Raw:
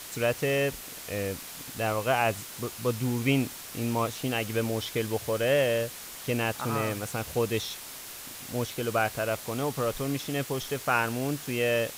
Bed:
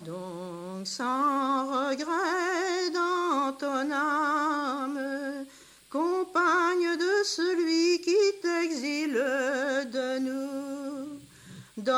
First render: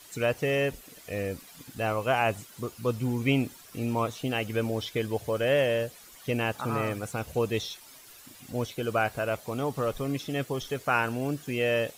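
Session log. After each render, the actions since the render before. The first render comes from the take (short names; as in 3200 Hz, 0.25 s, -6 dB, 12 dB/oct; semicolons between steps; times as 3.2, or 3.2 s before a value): denoiser 12 dB, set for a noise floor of -42 dBFS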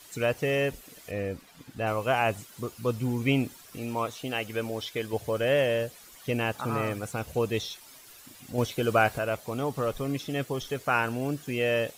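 1.11–1.87 high shelf 4700 Hz -10.5 dB; 3.77–5.13 low shelf 300 Hz -7.5 dB; 8.58–9.18 gain +4 dB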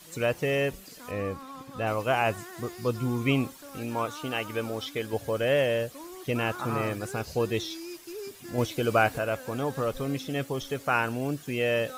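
add bed -16.5 dB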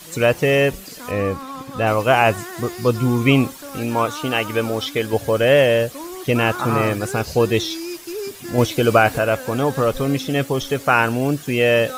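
gain +10.5 dB; limiter -2 dBFS, peak gain reduction 3 dB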